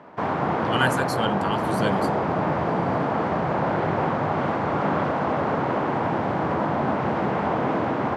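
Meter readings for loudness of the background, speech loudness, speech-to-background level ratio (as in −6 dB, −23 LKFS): −24.5 LKFS, −27.5 LKFS, −3.0 dB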